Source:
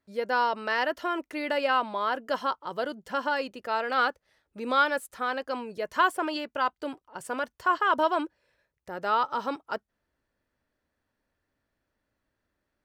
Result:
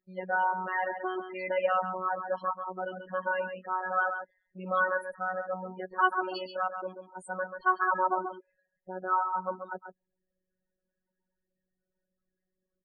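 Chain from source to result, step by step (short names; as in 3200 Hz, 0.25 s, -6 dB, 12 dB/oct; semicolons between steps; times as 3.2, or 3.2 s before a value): echo 0.136 s -8 dB; loudest bins only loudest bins 16; robotiser 185 Hz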